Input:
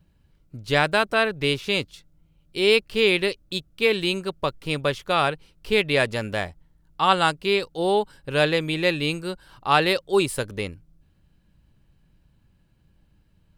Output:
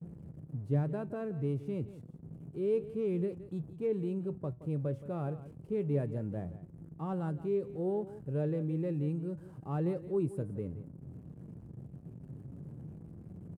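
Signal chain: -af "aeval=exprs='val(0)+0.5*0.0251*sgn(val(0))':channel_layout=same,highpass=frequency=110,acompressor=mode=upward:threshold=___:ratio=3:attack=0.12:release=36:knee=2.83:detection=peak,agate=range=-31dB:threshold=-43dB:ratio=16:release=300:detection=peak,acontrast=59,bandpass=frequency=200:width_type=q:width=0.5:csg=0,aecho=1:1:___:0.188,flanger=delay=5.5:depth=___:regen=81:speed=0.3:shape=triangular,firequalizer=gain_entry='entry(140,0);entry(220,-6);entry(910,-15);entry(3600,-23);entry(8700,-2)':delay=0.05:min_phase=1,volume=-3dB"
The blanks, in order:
-38dB, 172, 3.6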